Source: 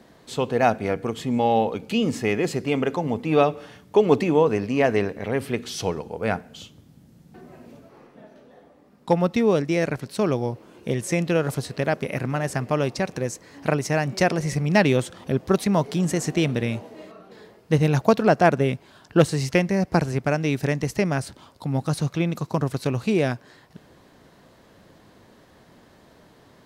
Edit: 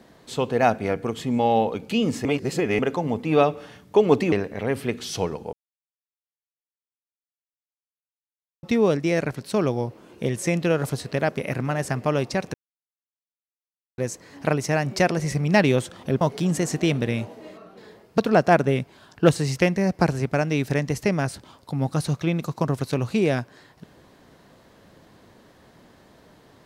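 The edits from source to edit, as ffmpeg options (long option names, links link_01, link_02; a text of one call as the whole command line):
ffmpeg -i in.wav -filter_complex "[0:a]asplit=9[link_01][link_02][link_03][link_04][link_05][link_06][link_07][link_08][link_09];[link_01]atrim=end=2.252[link_10];[link_02]atrim=start=2.248:end=2.792,asetpts=PTS-STARTPTS,areverse[link_11];[link_03]atrim=start=2.788:end=4.322[link_12];[link_04]atrim=start=4.968:end=6.18,asetpts=PTS-STARTPTS,afade=type=out:start_time=1.208:duration=0.004:curve=hsin[link_13];[link_05]atrim=start=6.18:end=9.28,asetpts=PTS-STARTPTS,volume=0[link_14];[link_06]atrim=start=9.28:end=13.19,asetpts=PTS-STARTPTS,afade=type=in:duration=0.004:curve=hsin,afade=type=out:start_time=3.906:duration=0.004:curve=hsin,apad=pad_dur=1.44[link_15];[link_07]atrim=start=13.19:end=15.422,asetpts=PTS-STARTPTS,afade=type=in:duration=0.004:curve=hsin[link_16];[link_08]atrim=start=15.748:end=17.722[link_17];[link_09]atrim=start=18.108[link_18];[link_10][link_11]acrossfade=duration=0.004:curve1=hsin:curve2=hsin[link_19];[link_19][link_12]acrossfade=duration=0.004:curve1=hsin:curve2=hsin[link_20];[link_13][link_14][link_15][link_16]concat=n=4:v=0:a=1[link_21];[link_20][link_21]acrossfade=duration=0.004:curve1=hsin:curve2=hsin[link_22];[link_22][link_17]acrossfade=duration=0.004:curve1=hsin:curve2=hsin[link_23];[link_23][link_18]acrossfade=duration=0.004:curve1=hsin:curve2=hsin" out.wav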